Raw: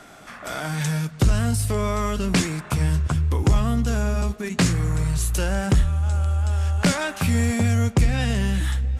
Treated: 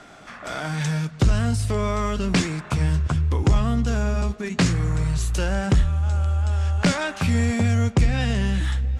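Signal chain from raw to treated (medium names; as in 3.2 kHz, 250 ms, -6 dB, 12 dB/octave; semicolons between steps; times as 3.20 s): low-pass 6.9 kHz 12 dB/octave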